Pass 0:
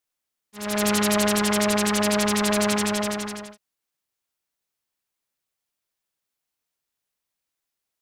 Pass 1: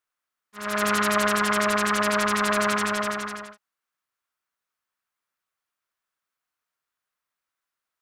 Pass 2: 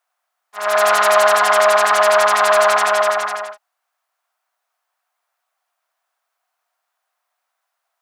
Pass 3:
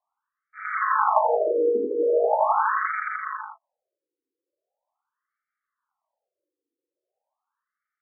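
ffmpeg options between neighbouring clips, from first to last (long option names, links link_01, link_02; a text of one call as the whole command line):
ffmpeg -i in.wav -af "equalizer=frequency=1300:width_type=o:width=1.5:gain=13.5,bandreject=frequency=840:width=16,volume=-6dB" out.wav
ffmpeg -i in.wav -af "asoftclip=type=tanh:threshold=-15.5dB,highpass=frequency=710:width_type=q:width=4.9,volume=7.5dB" out.wav
ffmpeg -i in.wav -af "aeval=exprs='val(0)*sin(2*PI*130*n/s)':channel_layout=same,highpass=frequency=300:width_type=q:width=0.5412,highpass=frequency=300:width_type=q:width=1.307,lowpass=frequency=2700:width_type=q:width=0.5176,lowpass=frequency=2700:width_type=q:width=0.7071,lowpass=frequency=2700:width_type=q:width=1.932,afreqshift=-280,afftfilt=real='re*between(b*sr/1024,360*pow(1700/360,0.5+0.5*sin(2*PI*0.41*pts/sr))/1.41,360*pow(1700/360,0.5+0.5*sin(2*PI*0.41*pts/sr))*1.41)':imag='im*between(b*sr/1024,360*pow(1700/360,0.5+0.5*sin(2*PI*0.41*pts/sr))/1.41,360*pow(1700/360,0.5+0.5*sin(2*PI*0.41*pts/sr))*1.41)':win_size=1024:overlap=0.75" out.wav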